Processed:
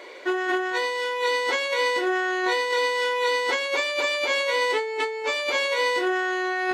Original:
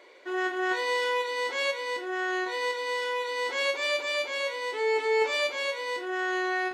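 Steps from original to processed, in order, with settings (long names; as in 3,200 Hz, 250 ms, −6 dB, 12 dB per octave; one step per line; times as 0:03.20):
compressor whose output falls as the input rises −33 dBFS, ratio −1
level +8 dB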